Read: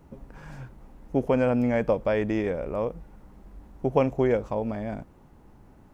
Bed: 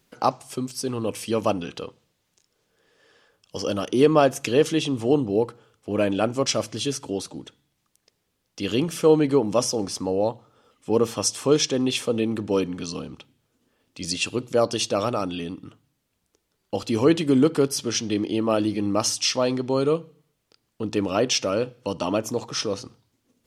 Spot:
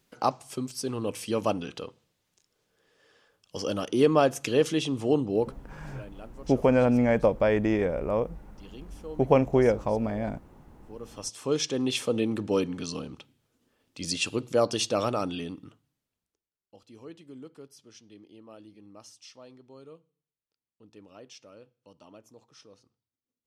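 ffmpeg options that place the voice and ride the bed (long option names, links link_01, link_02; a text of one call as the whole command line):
ffmpeg -i stem1.wav -i stem2.wav -filter_complex "[0:a]adelay=5350,volume=1.5dB[link_01];[1:a]volume=16.5dB,afade=type=out:start_time=5.43:duration=0.32:silence=0.105925,afade=type=in:start_time=10.98:duration=1.05:silence=0.0944061,afade=type=out:start_time=15.28:duration=1.22:silence=0.0630957[link_02];[link_01][link_02]amix=inputs=2:normalize=0" out.wav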